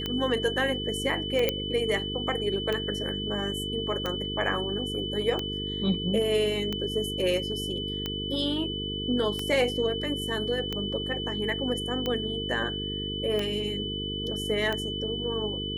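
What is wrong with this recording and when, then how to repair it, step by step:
buzz 50 Hz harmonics 9 -35 dBFS
tick 45 rpm -16 dBFS
whine 3 kHz -33 dBFS
1.49 s: pop -10 dBFS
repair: de-click; de-hum 50 Hz, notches 9; band-stop 3 kHz, Q 30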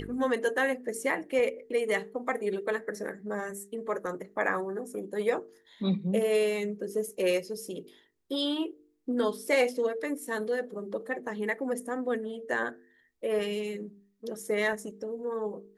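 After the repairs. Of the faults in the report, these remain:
nothing left

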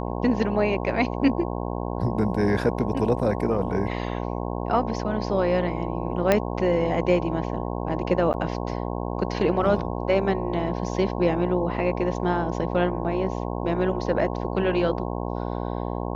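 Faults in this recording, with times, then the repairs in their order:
buzz 60 Hz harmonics 18 -29 dBFS
6.32 s: pop -6 dBFS
8.33–8.34 s: dropout 9.5 ms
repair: de-click; de-hum 60 Hz, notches 18; interpolate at 8.33 s, 9.5 ms

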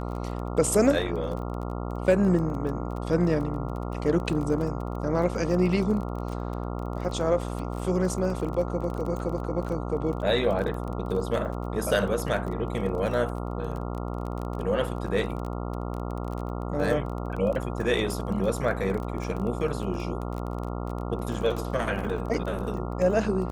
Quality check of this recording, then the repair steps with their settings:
buzz 60 Hz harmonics 23 -32 dBFS
crackle 22 per s -32 dBFS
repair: de-click; de-hum 60 Hz, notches 23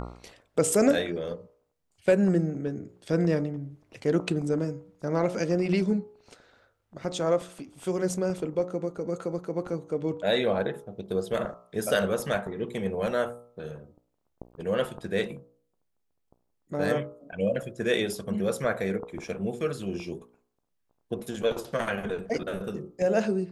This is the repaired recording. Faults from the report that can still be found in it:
nothing left

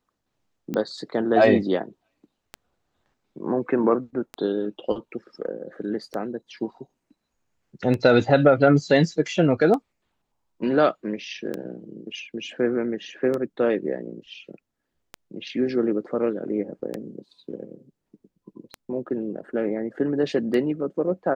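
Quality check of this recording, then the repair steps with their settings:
tick 33 1/3 rpm -16 dBFS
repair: de-click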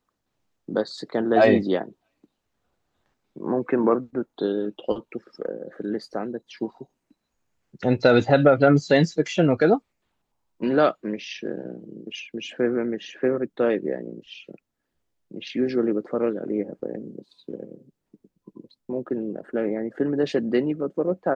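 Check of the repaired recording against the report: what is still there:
nothing left

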